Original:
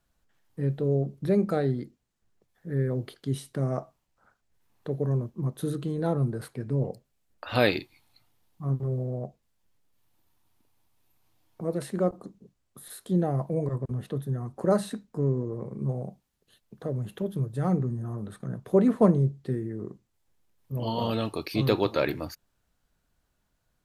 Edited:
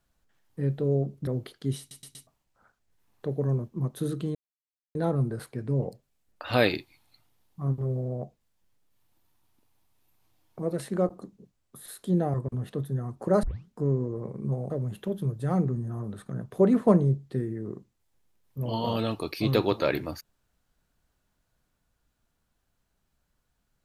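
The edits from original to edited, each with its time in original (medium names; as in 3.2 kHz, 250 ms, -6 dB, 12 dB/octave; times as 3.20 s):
1.27–2.89 s: delete
3.41 s: stutter in place 0.12 s, 4 plays
5.97 s: insert silence 0.60 s
13.36–13.71 s: delete
14.80 s: tape start 0.27 s
16.07–16.84 s: delete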